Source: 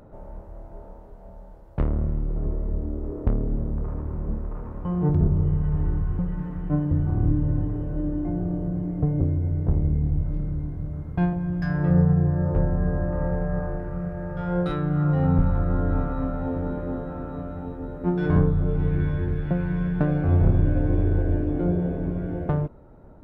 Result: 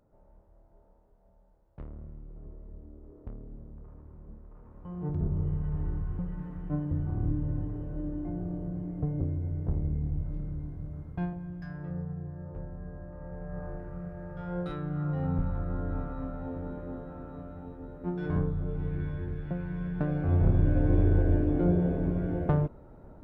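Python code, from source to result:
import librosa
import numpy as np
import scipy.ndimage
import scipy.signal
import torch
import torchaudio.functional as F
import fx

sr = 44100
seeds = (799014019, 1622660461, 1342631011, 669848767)

y = fx.gain(x, sr, db=fx.line((4.46, -19.5), (5.38, -8.0), (11.03, -8.0), (11.99, -18.0), (13.2, -18.0), (13.69, -9.5), (19.73, -9.5), (20.98, -1.5)))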